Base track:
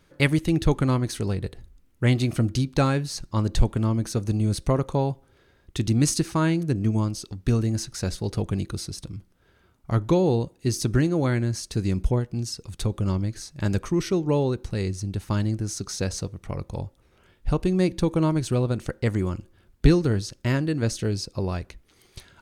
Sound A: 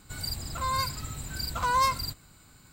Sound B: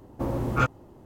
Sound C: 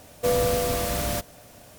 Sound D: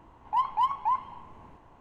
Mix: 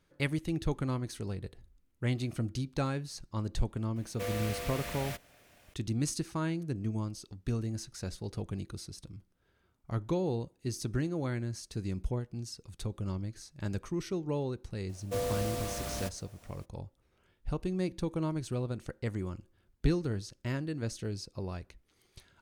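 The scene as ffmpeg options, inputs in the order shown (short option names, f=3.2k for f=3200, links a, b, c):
-filter_complex "[3:a]asplit=2[a][b];[0:a]volume=-11dB[c];[a]equalizer=f=2.2k:t=o:w=1.5:g=10.5[d];[b]equalizer=f=15k:w=1.4:g=-7[e];[d]atrim=end=1.78,asetpts=PTS-STARTPTS,volume=-15.5dB,afade=t=in:d=0.004:c=hsin,afade=t=out:st=1.776:d=0.004:c=hsin,adelay=3960[f];[e]atrim=end=1.78,asetpts=PTS-STARTPTS,volume=-10.5dB,afade=t=in:d=0.02,afade=t=out:st=1.76:d=0.02,adelay=14880[g];[c][f][g]amix=inputs=3:normalize=0"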